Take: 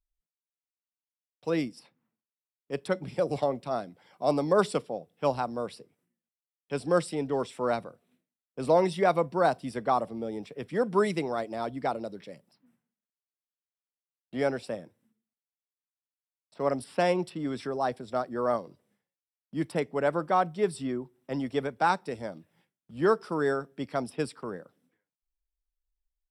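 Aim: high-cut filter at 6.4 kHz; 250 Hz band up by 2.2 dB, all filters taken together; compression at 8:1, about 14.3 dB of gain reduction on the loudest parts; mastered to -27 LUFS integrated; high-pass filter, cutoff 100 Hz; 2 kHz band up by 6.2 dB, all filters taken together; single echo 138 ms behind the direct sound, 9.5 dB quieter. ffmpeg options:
-af "highpass=100,lowpass=6400,equalizer=f=250:t=o:g=3,equalizer=f=2000:t=o:g=8.5,acompressor=threshold=0.0251:ratio=8,aecho=1:1:138:0.335,volume=3.35"

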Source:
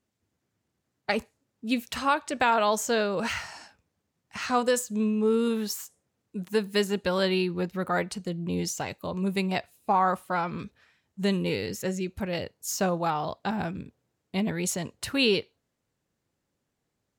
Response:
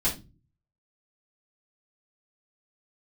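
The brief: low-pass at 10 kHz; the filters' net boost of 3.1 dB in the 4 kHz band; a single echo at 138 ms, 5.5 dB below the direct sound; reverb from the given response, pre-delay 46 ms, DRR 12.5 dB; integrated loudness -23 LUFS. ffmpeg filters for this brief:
-filter_complex "[0:a]lowpass=10000,equalizer=f=4000:t=o:g=4,aecho=1:1:138:0.531,asplit=2[s0][s1];[1:a]atrim=start_sample=2205,adelay=46[s2];[s1][s2]afir=irnorm=-1:irlink=0,volume=0.0841[s3];[s0][s3]amix=inputs=2:normalize=0,volume=1.5"

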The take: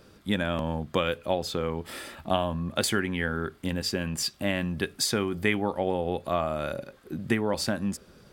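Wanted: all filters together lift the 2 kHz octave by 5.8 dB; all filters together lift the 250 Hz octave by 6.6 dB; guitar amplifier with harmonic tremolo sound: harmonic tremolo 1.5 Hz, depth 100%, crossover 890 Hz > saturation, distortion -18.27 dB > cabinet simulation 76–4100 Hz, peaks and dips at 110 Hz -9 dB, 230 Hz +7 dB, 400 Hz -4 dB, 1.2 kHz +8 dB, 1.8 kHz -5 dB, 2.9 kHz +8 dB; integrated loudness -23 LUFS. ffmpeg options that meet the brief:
-filter_complex "[0:a]equalizer=f=250:t=o:g=4.5,equalizer=f=2000:t=o:g=7.5,acrossover=split=890[s0][s1];[s0]aeval=exprs='val(0)*(1-1/2+1/2*cos(2*PI*1.5*n/s))':c=same[s2];[s1]aeval=exprs='val(0)*(1-1/2-1/2*cos(2*PI*1.5*n/s))':c=same[s3];[s2][s3]amix=inputs=2:normalize=0,asoftclip=threshold=0.15,highpass=76,equalizer=f=110:t=q:w=4:g=-9,equalizer=f=230:t=q:w=4:g=7,equalizer=f=400:t=q:w=4:g=-4,equalizer=f=1200:t=q:w=4:g=8,equalizer=f=1800:t=q:w=4:g=-5,equalizer=f=2900:t=q:w=4:g=8,lowpass=f=4100:w=0.5412,lowpass=f=4100:w=1.3066,volume=2.24"

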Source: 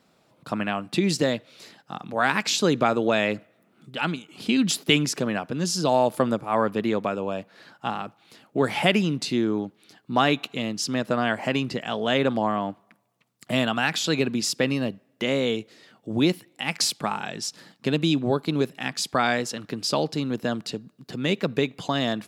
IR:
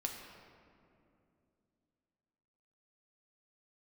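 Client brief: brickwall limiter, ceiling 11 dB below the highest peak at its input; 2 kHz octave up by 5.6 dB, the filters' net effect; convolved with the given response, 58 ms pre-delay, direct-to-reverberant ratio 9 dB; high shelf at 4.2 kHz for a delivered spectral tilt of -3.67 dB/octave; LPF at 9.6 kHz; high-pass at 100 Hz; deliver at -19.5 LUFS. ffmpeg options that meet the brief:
-filter_complex "[0:a]highpass=100,lowpass=9600,equalizer=f=2000:t=o:g=6.5,highshelf=f=4200:g=3,alimiter=limit=0.266:level=0:latency=1,asplit=2[s0][s1];[1:a]atrim=start_sample=2205,adelay=58[s2];[s1][s2]afir=irnorm=-1:irlink=0,volume=0.335[s3];[s0][s3]amix=inputs=2:normalize=0,volume=1.88"

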